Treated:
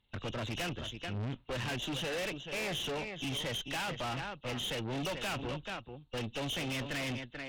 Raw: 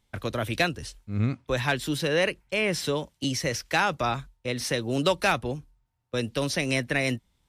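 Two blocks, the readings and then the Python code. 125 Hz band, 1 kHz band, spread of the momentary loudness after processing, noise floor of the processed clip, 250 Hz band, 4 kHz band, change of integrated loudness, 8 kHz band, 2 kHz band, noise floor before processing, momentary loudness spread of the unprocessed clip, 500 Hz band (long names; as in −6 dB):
−8.5 dB, −10.5 dB, 4 LU, −59 dBFS, −9.5 dB, −5.0 dB, −9.5 dB, −9.5 dB, −10.5 dB, −73 dBFS, 8 LU, −11.5 dB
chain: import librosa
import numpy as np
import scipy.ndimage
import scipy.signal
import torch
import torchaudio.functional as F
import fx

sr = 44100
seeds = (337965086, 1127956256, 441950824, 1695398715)

y = fx.freq_compress(x, sr, knee_hz=2600.0, ratio=4.0)
y = y + 10.0 ** (-12.0 / 20.0) * np.pad(y, (int(436 * sr / 1000.0), 0))[:len(y)]
y = fx.tube_stage(y, sr, drive_db=34.0, bias=0.8)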